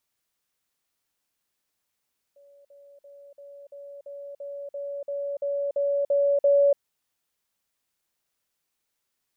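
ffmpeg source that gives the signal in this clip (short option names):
-f lavfi -i "aevalsrc='pow(10,(-51.5+3*floor(t/0.34))/20)*sin(2*PI*566*t)*clip(min(mod(t,0.34),0.29-mod(t,0.34))/0.005,0,1)':d=4.42:s=44100"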